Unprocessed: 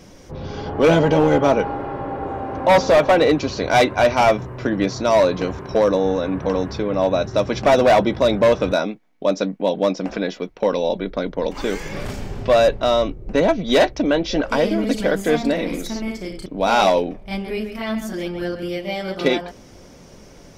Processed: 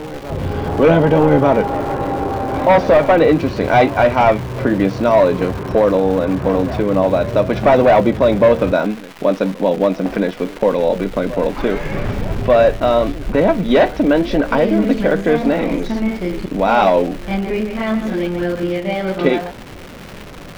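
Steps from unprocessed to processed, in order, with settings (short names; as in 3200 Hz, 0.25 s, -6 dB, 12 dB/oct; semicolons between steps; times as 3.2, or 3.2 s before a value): in parallel at +0.5 dB: compressor, threshold -26 dBFS, peak gain reduction 14.5 dB; on the sum: high shelf 5900 Hz -10 dB; on a send: reverse echo 1.192 s -18 dB; on the sum: flange 0.76 Hz, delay 6.6 ms, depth 6.5 ms, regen +84%; crackle 460/s -25 dBFS; tone controls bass +2 dB, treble -13 dB; maximiser +8.5 dB; gain -2.5 dB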